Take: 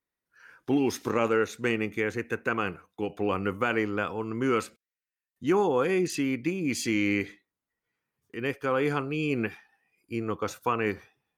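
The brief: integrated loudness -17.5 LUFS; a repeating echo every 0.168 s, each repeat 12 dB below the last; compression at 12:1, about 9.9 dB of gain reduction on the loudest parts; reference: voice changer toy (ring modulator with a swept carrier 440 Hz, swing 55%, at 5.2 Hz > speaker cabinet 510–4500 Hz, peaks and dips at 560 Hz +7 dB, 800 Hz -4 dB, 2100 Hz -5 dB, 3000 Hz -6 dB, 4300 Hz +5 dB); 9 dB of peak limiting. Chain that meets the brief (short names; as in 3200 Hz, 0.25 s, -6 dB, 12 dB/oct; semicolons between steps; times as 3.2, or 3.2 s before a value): compressor 12:1, threshold -30 dBFS; limiter -27.5 dBFS; feedback echo 0.168 s, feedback 25%, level -12 dB; ring modulator with a swept carrier 440 Hz, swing 55%, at 5.2 Hz; speaker cabinet 510–4500 Hz, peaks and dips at 560 Hz +7 dB, 800 Hz -4 dB, 2100 Hz -5 dB, 3000 Hz -6 dB, 4300 Hz +5 dB; gain +26 dB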